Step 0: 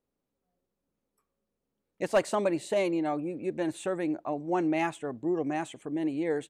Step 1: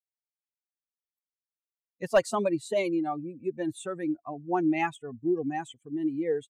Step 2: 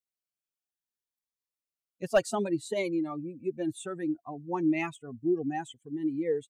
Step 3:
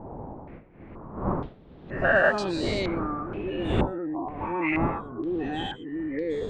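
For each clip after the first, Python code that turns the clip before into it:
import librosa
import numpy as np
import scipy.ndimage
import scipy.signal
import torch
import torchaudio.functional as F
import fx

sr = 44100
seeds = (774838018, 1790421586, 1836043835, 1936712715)

y1 = fx.bin_expand(x, sr, power=2.0)
y1 = y1 * librosa.db_to_amplitude(4.5)
y2 = fx.notch_cascade(y1, sr, direction='rising', hz=0.62)
y3 = fx.spec_dilate(y2, sr, span_ms=240)
y3 = fx.dmg_wind(y3, sr, seeds[0], corner_hz=330.0, level_db=-29.0)
y3 = fx.filter_held_lowpass(y3, sr, hz=2.1, low_hz=880.0, high_hz=4600.0)
y3 = y3 * librosa.db_to_amplitude(-5.5)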